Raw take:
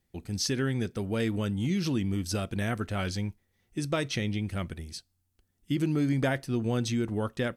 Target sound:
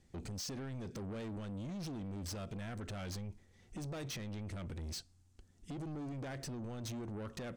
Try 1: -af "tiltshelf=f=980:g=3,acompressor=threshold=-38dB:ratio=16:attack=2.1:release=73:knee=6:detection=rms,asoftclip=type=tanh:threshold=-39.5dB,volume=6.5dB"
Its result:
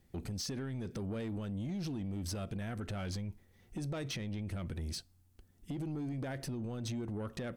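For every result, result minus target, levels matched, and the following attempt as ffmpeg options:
soft clip: distortion -7 dB; 8000 Hz band -2.5 dB
-af "tiltshelf=f=980:g=3,acompressor=threshold=-38dB:ratio=16:attack=2.1:release=73:knee=6:detection=rms,asoftclip=type=tanh:threshold=-46.5dB,volume=6.5dB"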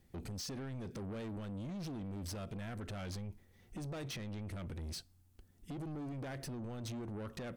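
8000 Hz band -2.0 dB
-af "tiltshelf=f=980:g=3,acompressor=threshold=-38dB:ratio=16:attack=2.1:release=73:knee=6:detection=rms,lowpass=f=7.4k:t=q:w=1.7,asoftclip=type=tanh:threshold=-46.5dB,volume=6.5dB"

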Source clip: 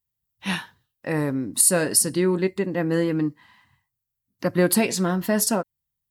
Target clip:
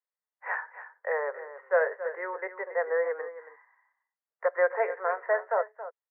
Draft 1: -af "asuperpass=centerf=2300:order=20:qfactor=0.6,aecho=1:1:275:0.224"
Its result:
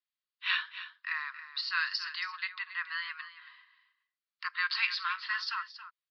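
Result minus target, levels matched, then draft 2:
2000 Hz band +4.5 dB
-af "asuperpass=centerf=960:order=20:qfactor=0.6,aecho=1:1:275:0.224"

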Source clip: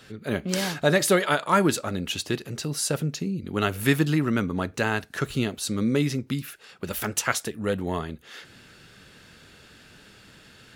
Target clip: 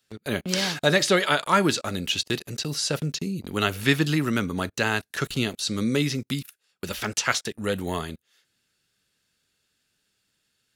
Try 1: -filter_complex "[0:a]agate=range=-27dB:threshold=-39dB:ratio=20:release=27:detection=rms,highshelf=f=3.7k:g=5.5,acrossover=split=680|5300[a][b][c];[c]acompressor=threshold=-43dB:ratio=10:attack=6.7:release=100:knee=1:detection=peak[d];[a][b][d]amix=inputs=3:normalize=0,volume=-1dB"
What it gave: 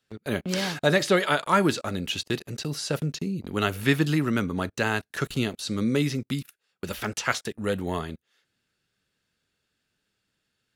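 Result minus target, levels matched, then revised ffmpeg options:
8000 Hz band -4.5 dB
-filter_complex "[0:a]agate=range=-27dB:threshold=-39dB:ratio=20:release=27:detection=rms,highshelf=f=3.7k:g=16,acrossover=split=680|5300[a][b][c];[c]acompressor=threshold=-43dB:ratio=10:attack=6.7:release=100:knee=1:detection=peak[d];[a][b][d]amix=inputs=3:normalize=0,volume=-1dB"

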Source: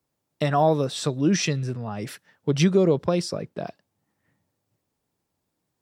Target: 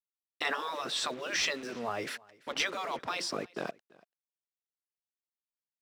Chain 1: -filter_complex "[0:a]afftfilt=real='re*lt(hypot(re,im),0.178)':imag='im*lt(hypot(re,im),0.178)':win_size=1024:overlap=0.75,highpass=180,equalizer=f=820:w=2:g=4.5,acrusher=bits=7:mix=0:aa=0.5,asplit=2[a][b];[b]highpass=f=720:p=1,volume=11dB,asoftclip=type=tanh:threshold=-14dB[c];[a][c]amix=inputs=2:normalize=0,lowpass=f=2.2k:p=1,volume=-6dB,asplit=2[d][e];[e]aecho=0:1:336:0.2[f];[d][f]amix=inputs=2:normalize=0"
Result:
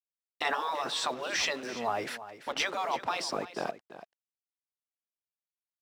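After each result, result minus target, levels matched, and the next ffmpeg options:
echo-to-direct +10.5 dB; 1000 Hz band +3.5 dB
-filter_complex "[0:a]afftfilt=real='re*lt(hypot(re,im),0.178)':imag='im*lt(hypot(re,im),0.178)':win_size=1024:overlap=0.75,highpass=180,equalizer=f=820:w=2:g=4.5,acrusher=bits=7:mix=0:aa=0.5,asplit=2[a][b];[b]highpass=f=720:p=1,volume=11dB,asoftclip=type=tanh:threshold=-14dB[c];[a][c]amix=inputs=2:normalize=0,lowpass=f=2.2k:p=1,volume=-6dB,asplit=2[d][e];[e]aecho=0:1:336:0.0596[f];[d][f]amix=inputs=2:normalize=0"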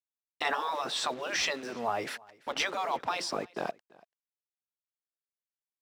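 1000 Hz band +3.5 dB
-filter_complex "[0:a]afftfilt=real='re*lt(hypot(re,im),0.178)':imag='im*lt(hypot(re,im),0.178)':win_size=1024:overlap=0.75,highpass=180,equalizer=f=820:w=2:g=-3.5,acrusher=bits=7:mix=0:aa=0.5,asplit=2[a][b];[b]highpass=f=720:p=1,volume=11dB,asoftclip=type=tanh:threshold=-14dB[c];[a][c]amix=inputs=2:normalize=0,lowpass=f=2.2k:p=1,volume=-6dB,asplit=2[d][e];[e]aecho=0:1:336:0.0596[f];[d][f]amix=inputs=2:normalize=0"

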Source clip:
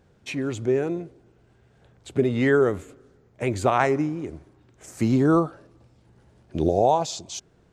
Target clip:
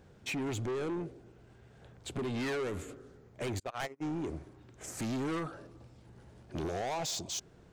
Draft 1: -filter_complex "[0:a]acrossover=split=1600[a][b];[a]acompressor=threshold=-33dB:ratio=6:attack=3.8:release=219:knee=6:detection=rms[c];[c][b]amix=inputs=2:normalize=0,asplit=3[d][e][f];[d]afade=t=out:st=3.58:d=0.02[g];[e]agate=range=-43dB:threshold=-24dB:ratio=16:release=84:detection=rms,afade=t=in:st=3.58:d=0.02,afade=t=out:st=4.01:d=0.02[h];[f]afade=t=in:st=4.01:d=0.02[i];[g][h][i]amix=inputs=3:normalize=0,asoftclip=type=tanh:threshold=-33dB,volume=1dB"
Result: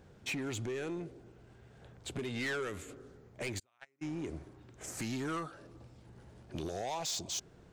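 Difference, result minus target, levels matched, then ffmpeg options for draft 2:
compressor: peak gain reduction +8.5 dB
-filter_complex "[0:a]acrossover=split=1600[a][b];[a]acompressor=threshold=-23dB:ratio=6:attack=3.8:release=219:knee=6:detection=rms[c];[c][b]amix=inputs=2:normalize=0,asplit=3[d][e][f];[d]afade=t=out:st=3.58:d=0.02[g];[e]agate=range=-43dB:threshold=-24dB:ratio=16:release=84:detection=rms,afade=t=in:st=3.58:d=0.02,afade=t=out:st=4.01:d=0.02[h];[f]afade=t=in:st=4.01:d=0.02[i];[g][h][i]amix=inputs=3:normalize=0,asoftclip=type=tanh:threshold=-33dB,volume=1dB"

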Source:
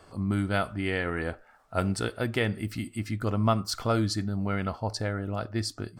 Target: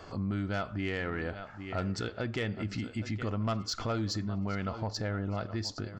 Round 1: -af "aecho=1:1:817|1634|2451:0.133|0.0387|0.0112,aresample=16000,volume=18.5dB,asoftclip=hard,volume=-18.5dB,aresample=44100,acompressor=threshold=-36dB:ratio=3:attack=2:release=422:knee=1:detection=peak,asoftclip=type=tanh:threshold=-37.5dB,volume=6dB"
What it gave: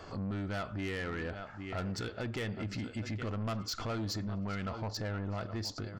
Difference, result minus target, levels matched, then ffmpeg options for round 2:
soft clip: distortion +13 dB
-af "aecho=1:1:817|1634|2451:0.133|0.0387|0.0112,aresample=16000,volume=18.5dB,asoftclip=hard,volume=-18.5dB,aresample=44100,acompressor=threshold=-36dB:ratio=3:attack=2:release=422:knee=1:detection=peak,asoftclip=type=tanh:threshold=-28dB,volume=6dB"

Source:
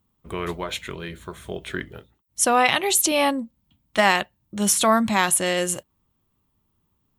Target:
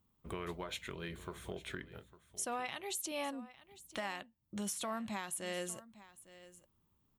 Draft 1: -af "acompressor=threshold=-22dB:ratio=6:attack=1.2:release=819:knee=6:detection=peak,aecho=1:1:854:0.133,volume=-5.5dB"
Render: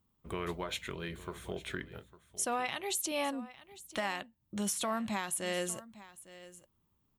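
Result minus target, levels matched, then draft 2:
compressor: peak gain reduction -5.5 dB
-af "acompressor=threshold=-28.5dB:ratio=6:attack=1.2:release=819:knee=6:detection=peak,aecho=1:1:854:0.133,volume=-5.5dB"

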